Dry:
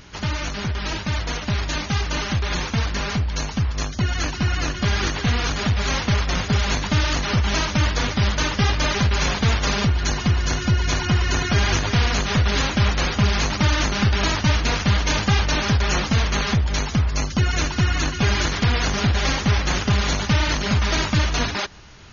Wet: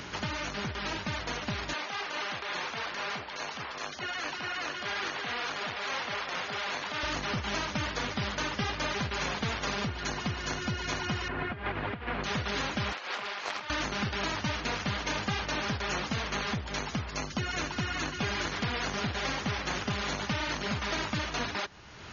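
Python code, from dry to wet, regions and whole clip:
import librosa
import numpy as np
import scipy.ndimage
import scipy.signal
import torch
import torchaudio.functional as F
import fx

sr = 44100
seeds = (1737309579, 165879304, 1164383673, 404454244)

y = fx.chain(x, sr, fx.bandpass_edges(low_hz=470.0, high_hz=5400.0),
    fx.transient(attack_db=-11, sustain_db=3), at=(1.73, 7.03))
y = fx.chain(y, sr, fx.cvsd(bps=32000),
    fx.bessel_lowpass(hz=1700.0, order=4),
    fx.over_compress(threshold_db=-22.0, ratio=-0.5), at=(11.28, 12.24))
y = fx.chain(y, sr, fx.bandpass_edges(low_hz=590.0, high_hz=5100.0),
    fx.over_compress(threshold_db=-30.0, ratio=-0.5),
    fx.doppler_dist(depth_ms=0.23), at=(12.92, 13.7))
y = fx.highpass(y, sr, hz=260.0, slope=6)
y = fx.high_shelf(y, sr, hz=5300.0, db=-8.0)
y = fx.band_squash(y, sr, depth_pct=70)
y = y * librosa.db_to_amplitude(-7.5)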